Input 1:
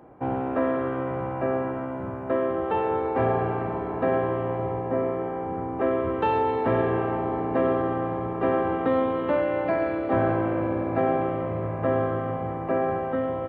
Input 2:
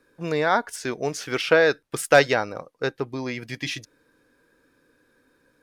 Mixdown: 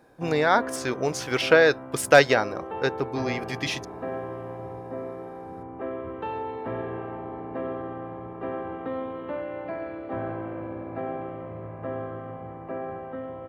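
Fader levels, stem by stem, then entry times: −9.0, +0.5 decibels; 0.00, 0.00 seconds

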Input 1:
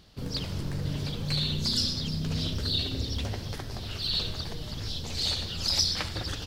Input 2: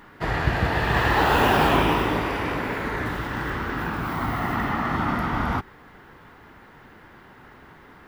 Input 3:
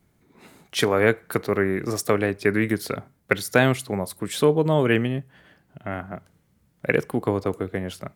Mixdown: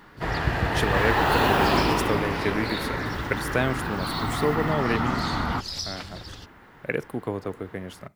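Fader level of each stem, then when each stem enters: −7.0, −2.0, −6.5 decibels; 0.00, 0.00, 0.00 seconds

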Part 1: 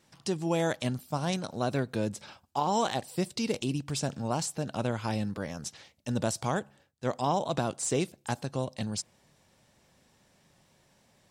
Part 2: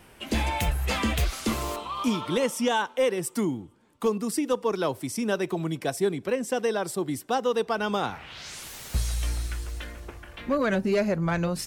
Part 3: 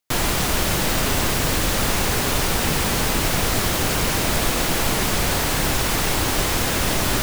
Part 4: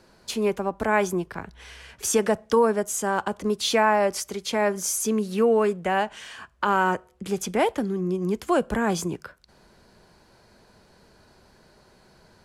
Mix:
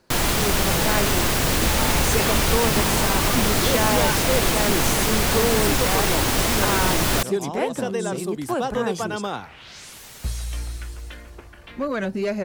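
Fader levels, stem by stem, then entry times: −5.5, −1.0, 0.0, −4.0 decibels; 0.20, 1.30, 0.00, 0.00 seconds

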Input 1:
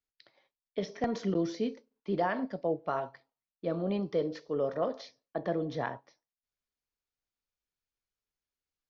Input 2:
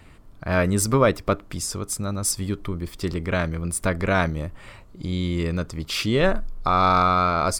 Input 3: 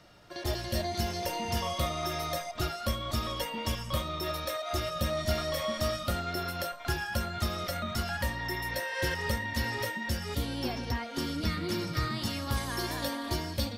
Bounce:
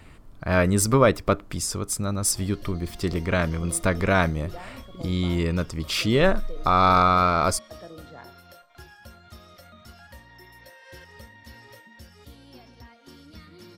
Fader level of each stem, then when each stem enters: −12.0, +0.5, −15.0 decibels; 2.35, 0.00, 1.90 seconds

